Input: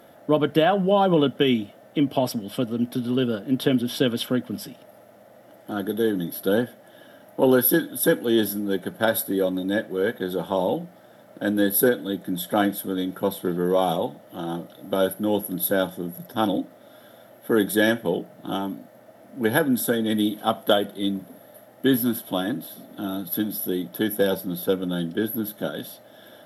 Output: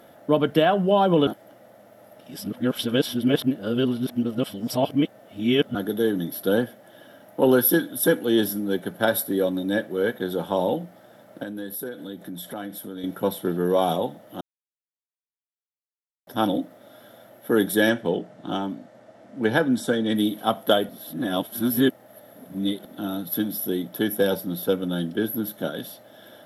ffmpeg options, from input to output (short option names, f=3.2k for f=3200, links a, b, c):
-filter_complex "[0:a]asettb=1/sr,asplit=3[a][b][c];[a]atrim=end=11.434[d];[b]atrim=start=11.43:end=13.04,asetpts=PTS-STARTPTS,afade=t=in:d=0.004:c=qsin,afade=t=out:st=1.606:d=0.004:c=qsin,acompressor=threshold=-34dB:ratio=3:attack=3.2:release=140:knee=1:detection=peak[e];[c]atrim=start=13.036[f];[d][e]acrossfade=d=0.004:c1=hsin:c2=qsin[g];[g][f]acrossfade=d=0.004:c1=qsin:c2=hsin,asettb=1/sr,asplit=3[h][i][j];[h]atrim=end=17.894[k];[i]atrim=start=17.89:end=20.16,asetpts=PTS-STARTPTS,afade=t=in:d=0.004:c=qsin,afade=t=out:st=2.266:d=0.004:c=qsin,lowpass=f=8.2k:w=0.5412,lowpass=f=8.2k:w=1.3066[l];[j]atrim=start=20.156[m];[k][l]acrossfade=d=0.004:c1=hsin:c2=qsin[n];[n][m]acrossfade=d=0.004:c1=qsin:c2=hsin,asplit=7[o][p][q][r][s][t][u];[o]atrim=end=1.272[v];[p]atrim=start=1.268:end=5.752,asetpts=PTS-STARTPTS,areverse[w];[q]atrim=start=5.748:end=14.41,asetpts=PTS-STARTPTS,afade=t=out:st=8.658:d=0.004:c=hsin[x];[r]atrim=start=14.41:end=16.27,asetpts=PTS-STARTPTS,volume=0[y];[s]atrim=start=16.27:end=20.892,asetpts=PTS-STARTPTS,afade=t=in:d=0.004:c=hsin[z];[t]atrim=start=20.888:end=22.852,asetpts=PTS-STARTPTS,areverse[aa];[u]atrim=start=22.848[ab];[v][w]acrossfade=d=0.004:c1=hsin:c2=hsin[ac];[x][y][z]concat=n=3:v=0:a=1[ad];[ac][ad]acrossfade=d=0.004:c1=hsin:c2=hsin[ae];[ae][aa]acrossfade=d=0.004:c1=hsin:c2=hsin[af];[af][ab]acrossfade=d=0.004:c1=hsin:c2=hsin"